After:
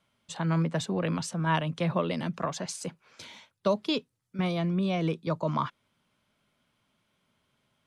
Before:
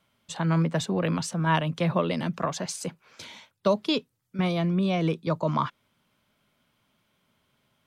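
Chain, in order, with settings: steep low-pass 12000 Hz 48 dB/oct; gain -3 dB

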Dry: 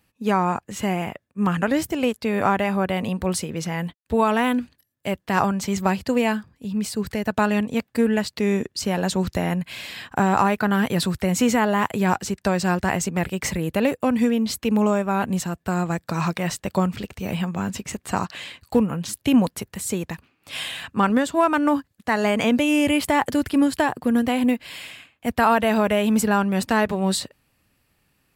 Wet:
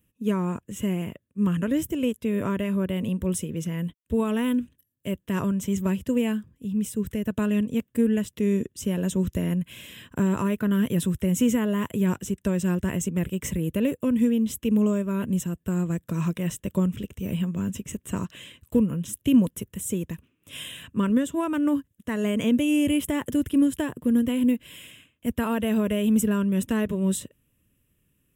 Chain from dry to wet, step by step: band shelf 1700 Hz -11 dB 1.3 oct; fixed phaser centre 1900 Hz, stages 4

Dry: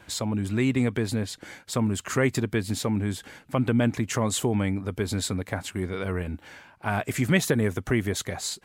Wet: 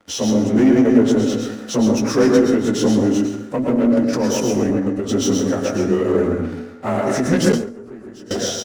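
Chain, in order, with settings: inharmonic rescaling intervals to 92%; on a send: echo 0.135 s -9 dB; on the sum: dynamic EQ 6000 Hz, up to +7 dB, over -54 dBFS, Q 6.2; sample leveller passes 3; 3.24–5.09 level quantiser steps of 10 dB; resonator 54 Hz, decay 1.7 s, harmonics all, mix 40%; plate-style reverb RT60 0.73 s, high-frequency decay 0.45×, pre-delay 95 ms, DRR 2 dB; 7.52–8.31 gate with hold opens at -9 dBFS; graphic EQ 125/250/500 Hz -6/+9/+8 dB; ending taper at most 100 dB/s; gain -1 dB

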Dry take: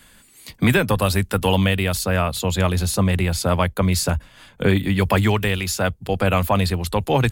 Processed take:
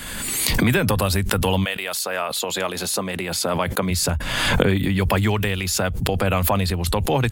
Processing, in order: recorder AGC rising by 44 dB/s; 1.64–3.9 HPF 630 Hz -> 180 Hz 12 dB/oct; backwards sustainer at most 29 dB/s; gain -2.5 dB

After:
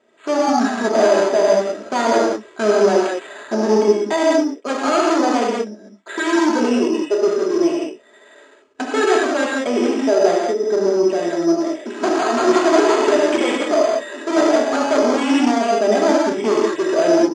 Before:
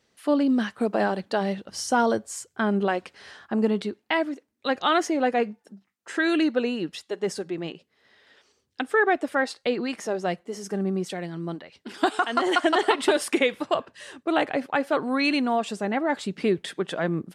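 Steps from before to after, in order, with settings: comb 3.1 ms, depth 56%; in parallel at -11.5 dB: sine folder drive 16 dB, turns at -7 dBFS; on the sum: non-linear reverb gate 0.23 s flat, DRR -4 dB; careless resampling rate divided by 8×, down filtered, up hold; speaker cabinet 240–6900 Hz, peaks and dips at 410 Hz +5 dB, 620 Hz +5 dB, 2000 Hz -4 dB, 3900 Hz -8 dB; gain -4 dB

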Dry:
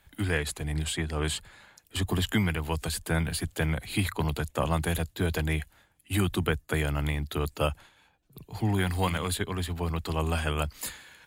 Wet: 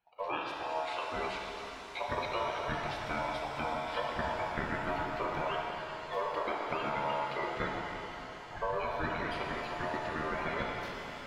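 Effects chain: bin magnitudes rounded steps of 30 dB; gate -59 dBFS, range -8 dB; spectral noise reduction 8 dB; compressor, threshold -30 dBFS, peak gain reduction 8.5 dB; ring modulator 790 Hz; air absorption 290 m; shimmer reverb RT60 3.5 s, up +7 st, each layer -8 dB, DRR -1 dB; gain +1.5 dB

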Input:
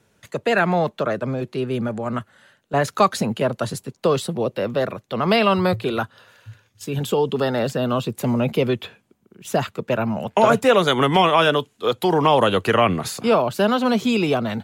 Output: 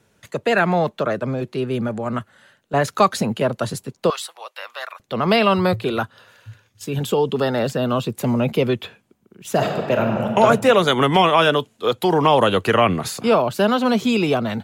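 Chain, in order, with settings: 4.1–5 HPF 930 Hz 24 dB/oct; 9.51–10.34 reverb throw, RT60 1.9 s, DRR 1.5 dB; gain +1 dB

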